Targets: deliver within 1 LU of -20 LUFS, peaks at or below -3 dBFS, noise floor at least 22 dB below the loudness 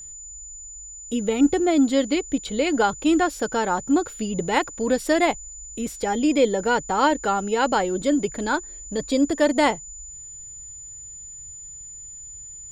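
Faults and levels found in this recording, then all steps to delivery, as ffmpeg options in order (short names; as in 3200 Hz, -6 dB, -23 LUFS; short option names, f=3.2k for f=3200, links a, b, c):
steady tone 7000 Hz; tone level -37 dBFS; loudness -22.5 LUFS; peak -6.5 dBFS; loudness target -20.0 LUFS
-> -af "bandreject=f=7k:w=30"
-af "volume=2.5dB"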